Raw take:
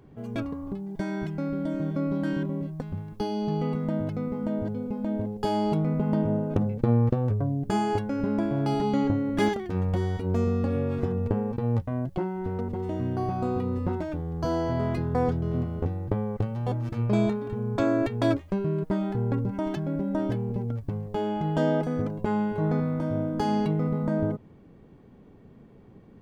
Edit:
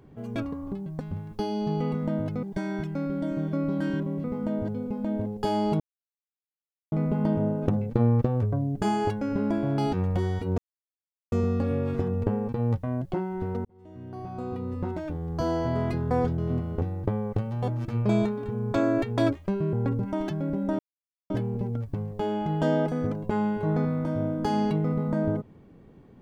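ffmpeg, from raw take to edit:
-filter_complex "[0:a]asplit=10[a][b][c][d][e][f][g][h][i][j];[a]atrim=end=0.862[k];[b]atrim=start=2.668:end=4.242[l];[c]atrim=start=0.858:end=2.672[m];[d]atrim=start=4.238:end=5.8,asetpts=PTS-STARTPTS,afade=t=out:st=1.558:d=0.004:c=hsin,apad=pad_dur=1.12[n];[e]atrim=start=5.8:end=8.812,asetpts=PTS-STARTPTS,afade=t=in:d=0.004:c=hsin[o];[f]atrim=start=9.708:end=10.36,asetpts=PTS-STARTPTS,afade=t=out:st=0.648:d=0.004:c=hsin,apad=pad_dur=0.74[p];[g]atrim=start=10.36:end=12.69,asetpts=PTS-STARTPTS,afade=t=in:d=0.004:c=hsin,afade=t=out:st=2.326:d=0.004:c=hsin[q];[h]atrim=start=12.69:end=18.772,asetpts=PTS-STARTPTS,afade=t=in:d=1.65[r];[i]atrim=start=19.188:end=20.25,asetpts=PTS-STARTPTS,afade=t=out:st=1.058:d=0.004:c=hsin,apad=pad_dur=0.51[s];[j]atrim=start=20.25,asetpts=PTS-STARTPTS,afade=t=in:d=0.004:c=hsin[t];[k][l]acrossfade=d=0.004:c1=hsin:c2=hsin[u];[u][m]acrossfade=d=0.004:c1=hsin:c2=hsin[v];[n][o]concat=n=2:v=0:a=1[w];[v][w]acrossfade=d=0.004:c1=hsin:c2=hsin[x];[p][q][r]concat=n=3:v=0:a=1[y];[x][y]acrossfade=d=0.004:c1=hsin:c2=hsin[z];[s][t]concat=n=2:v=0:a=1[aa];[z][aa]acrossfade=d=0.004:c1=hsin:c2=hsin"

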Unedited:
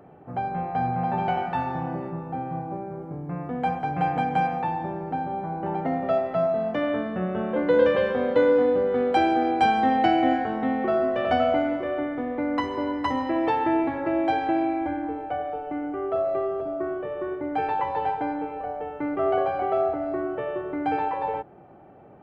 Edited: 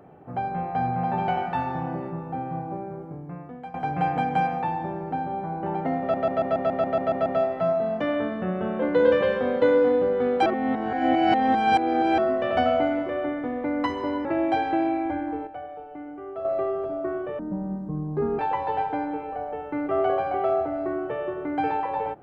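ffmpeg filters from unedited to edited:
-filter_complex "[0:a]asplit=18[a][b][c][d][e][f][g][h][i][j][k][l][m][n][o][p][q][r];[a]atrim=end=3.74,asetpts=PTS-STARTPTS,afade=t=out:st=2.87:d=0.87:silence=0.125893[s];[b]atrim=start=3.74:end=6.142,asetpts=PTS-STARTPTS,afade=t=in:d=0.004:c=hsin:silence=0.125893[t];[c]atrim=start=5.998:end=6.142[u];[d]atrim=start=5.998:end=6.142[v];[e]atrim=start=5.998:end=6.142[w];[f]atrim=start=5.998:end=6.142[x];[g]atrim=start=5.998:end=6.142[y];[h]atrim=start=5.998:end=6.142[z];[i]atrim=start=5.998:end=6.142[aa];[j]atrim=start=5.998:end=6.142[ab];[k]atrim=start=5.998:end=9.202[ac];[l]atrim=start=9.198:end=10.922,asetpts=PTS-STARTPTS,areverse[ad];[m]atrim=start=10.918:end=12.992[ae];[n]atrim=start=14.008:end=15.232[af];[o]atrim=start=15.228:end=16.212,asetpts=PTS-STARTPTS,volume=-8dB[ag];[p]atrim=start=16.208:end=17.154[ah];[q]atrim=start=17.15:end=17.67,asetpts=PTS-STARTPTS,asetrate=22932,aresample=44100[ai];[r]atrim=start=17.666[aj];[s][t]concat=n=2:v=0:a=1[ak];[ak][u]acrossfade=d=0.004:c1=hsin:c2=hsin[al];[al][v]acrossfade=d=0.004:c1=hsin:c2=hsin[am];[am][w]acrossfade=d=0.004:c1=hsin:c2=hsin[an];[an][x]acrossfade=d=0.004:c1=hsin:c2=hsin[ao];[ao][y]acrossfade=d=0.004:c1=hsin:c2=hsin[ap];[ap][z]acrossfade=d=0.004:c1=hsin:c2=hsin[aq];[aq][aa]acrossfade=d=0.004:c1=hsin:c2=hsin[ar];[ar][ab]acrossfade=d=0.004:c1=hsin:c2=hsin[as];[as][ac]acrossfade=d=0.004:c1=hsin:c2=hsin[at];[at][ad]acrossfade=d=0.004:c1=hsin:c2=hsin[au];[au][ae]acrossfade=d=0.004:c1=hsin:c2=hsin[av];[av][af]acrossfade=d=0.004:c1=hsin:c2=hsin[aw];[aw][ag]acrossfade=d=0.004:c1=hsin:c2=hsin[ax];[ax][ah]acrossfade=d=0.004:c1=hsin:c2=hsin[ay];[ay][ai]acrossfade=d=0.004:c1=hsin:c2=hsin[az];[az][aj]acrossfade=d=0.004:c1=hsin:c2=hsin"

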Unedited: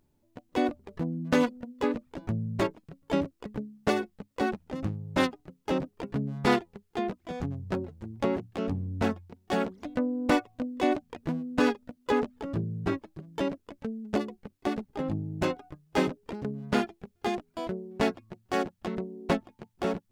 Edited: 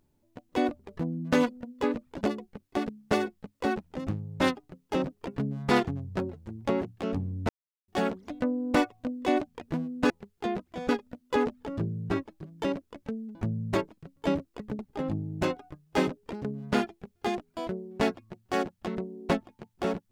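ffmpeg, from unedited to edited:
-filter_complex "[0:a]asplit=10[a][b][c][d][e][f][g][h][i][j];[a]atrim=end=2.212[k];[b]atrim=start=14.108:end=14.792[l];[c]atrim=start=3.648:end=6.632[m];[d]atrim=start=7.418:end=9.04,asetpts=PTS-STARTPTS,afade=t=out:st=1.618:d=0.004:c=hsin[n];[e]atrim=start=9.04:end=9.43,asetpts=PTS-STARTPTS,volume=0[o];[f]atrim=start=9.43:end=11.652,asetpts=PTS-STARTPTS,afade=t=in:d=0.004:c=hsin[p];[g]atrim=start=6.628:end=7.422[q];[h]atrim=start=11.648:end=14.112[r];[i]atrim=start=2.208:end=3.652[s];[j]atrim=start=14.788[t];[k][l]acrossfade=d=0.004:c1=hsin:c2=hsin[u];[u][m]acrossfade=d=0.004:c1=hsin:c2=hsin[v];[n][o][p]concat=n=3:v=0:a=1[w];[v][w]acrossfade=d=0.004:c1=hsin:c2=hsin[x];[x][q]acrossfade=d=0.004:c1=hsin:c2=hsin[y];[y][r]acrossfade=d=0.004:c1=hsin:c2=hsin[z];[z][s]acrossfade=d=0.004:c1=hsin:c2=hsin[aa];[aa][t]acrossfade=d=0.004:c1=hsin:c2=hsin"

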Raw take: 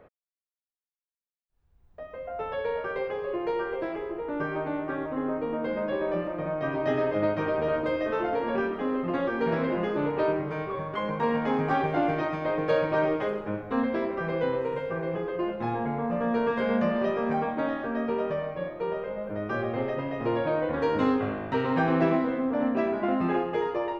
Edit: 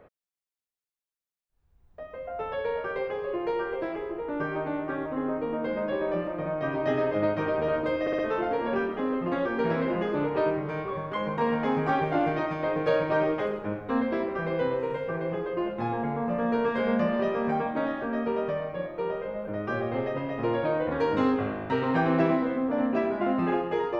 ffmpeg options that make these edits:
-filter_complex "[0:a]asplit=4[a][b][c][d];[a]atrim=end=8.072[e];[b]atrim=start=8.008:end=8.072[f];[c]atrim=start=8.008:end=8.072[g];[d]atrim=start=8.008[h];[e][f]acrossfade=d=0.004:c1=hsin:c2=hsin[i];[i][g]acrossfade=d=0.004:c1=hsin:c2=hsin[j];[j][h]acrossfade=d=0.004:c1=hsin:c2=hsin"

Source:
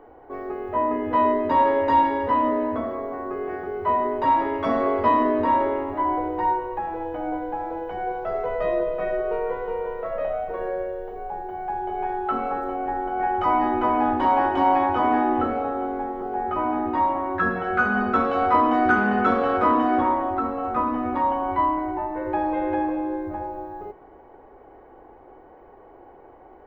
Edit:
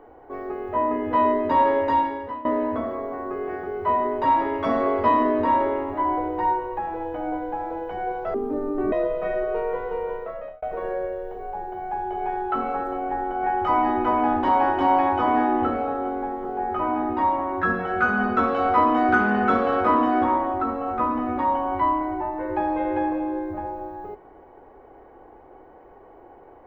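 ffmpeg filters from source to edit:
-filter_complex "[0:a]asplit=5[a][b][c][d][e];[a]atrim=end=2.45,asetpts=PTS-STARTPTS,afade=t=out:st=1.76:d=0.69:silence=0.11885[f];[b]atrim=start=2.45:end=8.344,asetpts=PTS-STARTPTS,afade=t=in:d=0.004:c=hsin:silence=0.11885[g];[c]atrim=start=8.34:end=8.69,asetpts=PTS-STARTPTS,asetrate=26460,aresample=44100[h];[d]atrim=start=8.686:end=10.39,asetpts=PTS-STARTPTS,afade=t=out:st=1.214:d=0.49[i];[e]atrim=start=10.39,asetpts=PTS-STARTPTS,afade=t=in:d=0.004:c=hsin[j];[f][g]concat=n=2:v=0:a=1[k];[k][h]acrossfade=d=0.004:c1=hsin:c2=hsin[l];[i][j]concat=n=2:v=0:a=1[m];[l][m]acrossfade=d=0.004:c1=hsin:c2=hsin"

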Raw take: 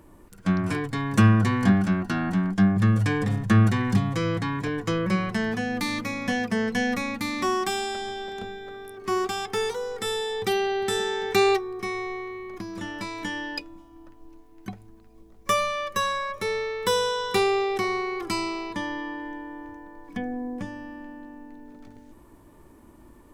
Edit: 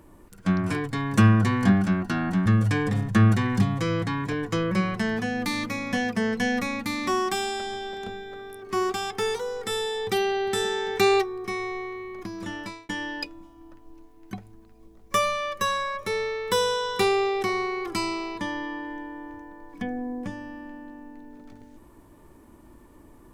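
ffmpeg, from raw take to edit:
-filter_complex "[0:a]asplit=3[a][b][c];[a]atrim=end=2.462[d];[b]atrim=start=2.808:end=13.24,asetpts=PTS-STARTPTS,afade=t=out:st=10.132:d=0.3[e];[c]atrim=start=13.24,asetpts=PTS-STARTPTS,afade=t=in:d=0.004:c=hsin[f];[e][f]concat=n=2:v=0:a=1[g];[d][g]acrossfade=d=0.004:c1=hsin:c2=hsin"

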